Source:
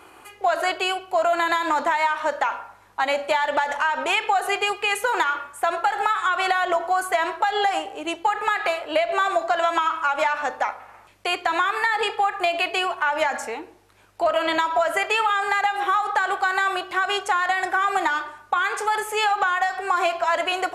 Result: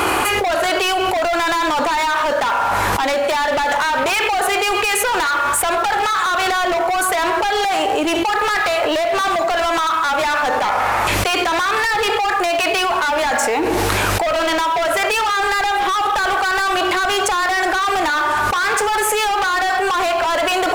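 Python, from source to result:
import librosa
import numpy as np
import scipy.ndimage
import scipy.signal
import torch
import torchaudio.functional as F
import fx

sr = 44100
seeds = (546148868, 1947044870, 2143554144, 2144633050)

y = fx.law_mismatch(x, sr, coded='mu')
y = np.clip(10.0 ** (24.0 / 20.0) * y, -1.0, 1.0) / 10.0 ** (24.0 / 20.0)
y = fx.env_flatten(y, sr, amount_pct=100)
y = y * 10.0 ** (7.0 / 20.0)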